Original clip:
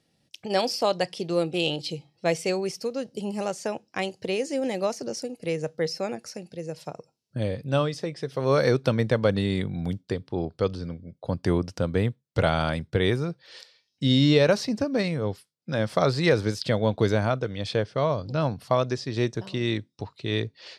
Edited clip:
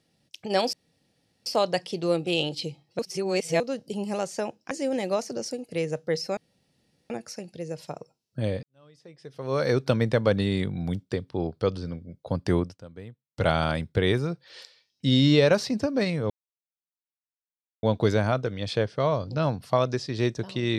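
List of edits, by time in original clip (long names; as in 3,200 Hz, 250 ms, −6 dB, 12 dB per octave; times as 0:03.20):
0:00.73: splice in room tone 0.73 s
0:02.26–0:02.87: reverse
0:03.98–0:04.42: remove
0:06.08: splice in room tone 0.73 s
0:07.61–0:08.84: fade in quadratic
0:11.56–0:12.46: duck −18 dB, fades 0.20 s
0:15.28–0:16.81: silence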